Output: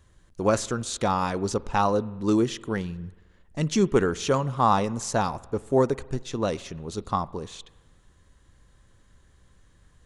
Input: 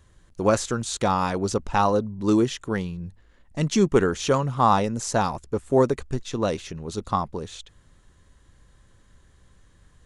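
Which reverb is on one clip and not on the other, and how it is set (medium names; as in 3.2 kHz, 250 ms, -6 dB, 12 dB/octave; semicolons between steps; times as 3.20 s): spring tank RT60 1.3 s, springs 45 ms, chirp 55 ms, DRR 20 dB; trim -2 dB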